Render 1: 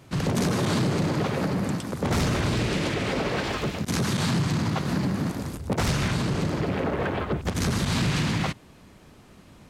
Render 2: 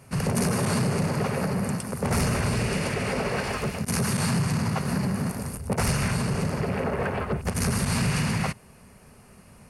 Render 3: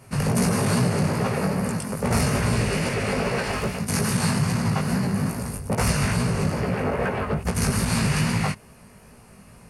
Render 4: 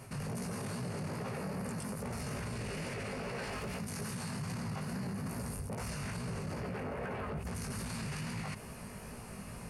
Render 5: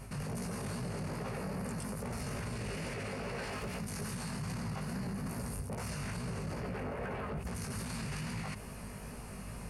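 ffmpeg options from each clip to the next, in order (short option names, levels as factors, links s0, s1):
-af "superequalizer=6b=0.355:13b=0.355:16b=3.16"
-af "flanger=delay=16.5:depth=3.9:speed=2.4,volume=1.88"
-af "areverse,acompressor=threshold=0.0316:ratio=6,areverse,alimiter=level_in=3.16:limit=0.0631:level=0:latency=1:release=41,volume=0.316,volume=1.33"
-af "aeval=exprs='val(0)+0.00355*(sin(2*PI*50*n/s)+sin(2*PI*2*50*n/s)/2+sin(2*PI*3*50*n/s)/3+sin(2*PI*4*50*n/s)/4+sin(2*PI*5*50*n/s)/5)':c=same"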